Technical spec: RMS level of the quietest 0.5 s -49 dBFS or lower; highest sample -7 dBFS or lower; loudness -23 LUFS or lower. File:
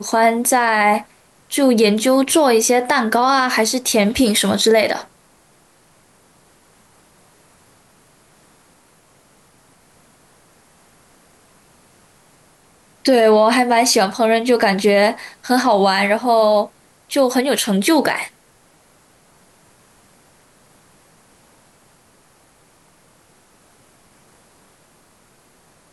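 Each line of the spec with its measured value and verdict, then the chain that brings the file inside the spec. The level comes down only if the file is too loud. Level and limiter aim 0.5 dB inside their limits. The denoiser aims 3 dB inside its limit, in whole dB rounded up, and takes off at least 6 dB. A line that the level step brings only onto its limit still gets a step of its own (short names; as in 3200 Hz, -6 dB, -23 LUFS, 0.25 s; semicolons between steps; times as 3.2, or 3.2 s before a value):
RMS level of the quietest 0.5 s -54 dBFS: OK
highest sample -5.0 dBFS: fail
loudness -15.5 LUFS: fail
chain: gain -8 dB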